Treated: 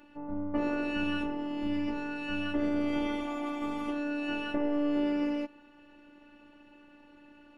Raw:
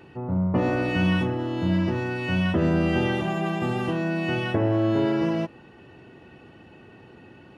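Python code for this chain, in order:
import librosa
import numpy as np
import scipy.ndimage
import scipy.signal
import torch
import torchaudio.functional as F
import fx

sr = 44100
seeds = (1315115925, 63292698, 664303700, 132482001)

y = fx.robotise(x, sr, hz=292.0)
y = F.gain(torch.from_numpy(y), -5.0).numpy()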